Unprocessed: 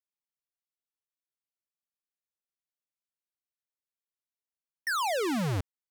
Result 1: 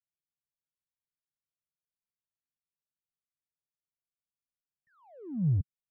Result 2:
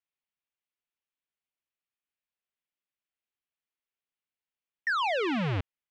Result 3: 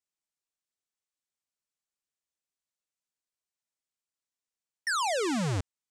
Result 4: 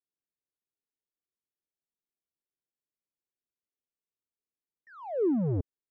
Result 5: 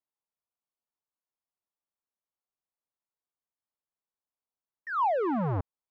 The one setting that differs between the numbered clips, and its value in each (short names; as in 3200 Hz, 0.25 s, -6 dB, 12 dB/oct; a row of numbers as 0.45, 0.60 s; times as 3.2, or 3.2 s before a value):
synth low-pass, frequency: 150, 2800, 7900, 400, 1000 Hz